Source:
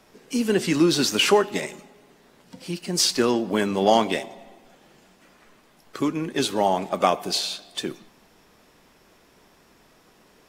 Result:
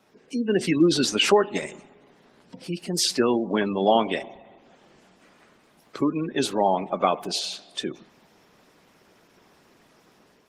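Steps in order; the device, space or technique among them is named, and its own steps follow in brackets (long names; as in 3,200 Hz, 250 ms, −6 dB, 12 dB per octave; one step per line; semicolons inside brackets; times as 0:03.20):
noise-suppressed video call (high-pass filter 100 Hz 12 dB per octave; gate on every frequency bin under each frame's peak −25 dB strong; automatic gain control gain up to 5 dB; level −4 dB; Opus 20 kbit/s 48,000 Hz)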